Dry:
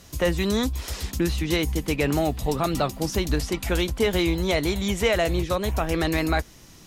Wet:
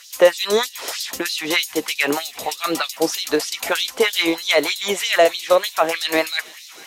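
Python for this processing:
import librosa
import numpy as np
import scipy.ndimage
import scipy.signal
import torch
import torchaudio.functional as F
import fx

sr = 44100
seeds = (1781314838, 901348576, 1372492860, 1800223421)

y = fx.echo_wet_highpass(x, sr, ms=450, feedback_pct=73, hz=2400.0, wet_db=-18)
y = fx.filter_lfo_highpass(y, sr, shape='sine', hz=3.2, low_hz=420.0, high_hz=4500.0, q=1.9)
y = y * librosa.db_to_amplitude(7.0)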